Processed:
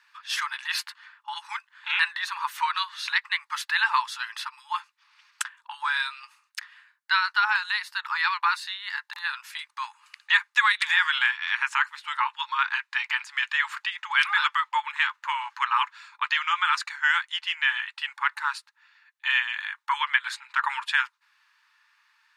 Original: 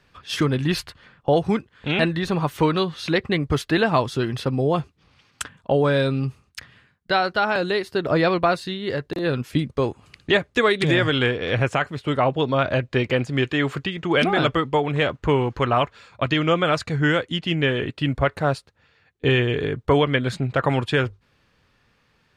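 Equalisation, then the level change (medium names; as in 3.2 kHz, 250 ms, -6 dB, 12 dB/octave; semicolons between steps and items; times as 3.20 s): brick-wall FIR high-pass 840 Hz; peaking EQ 1.7 kHz +4 dB 0.38 oct; band-stop 3.2 kHz, Q 22; 0.0 dB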